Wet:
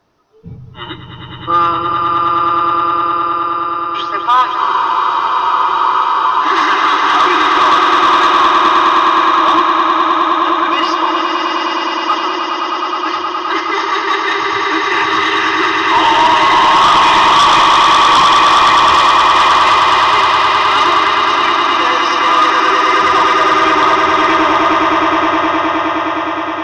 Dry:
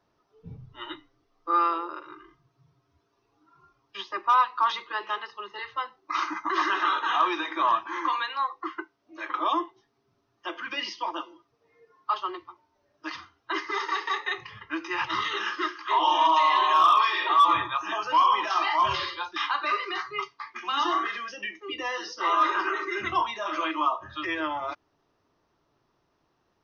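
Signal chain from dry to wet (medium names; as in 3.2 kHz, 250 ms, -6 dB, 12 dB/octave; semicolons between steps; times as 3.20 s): echo with a slow build-up 104 ms, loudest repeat 8, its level -6 dB; sine folder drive 8 dB, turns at -4.5 dBFS; spectral freeze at 4.60 s, 1.83 s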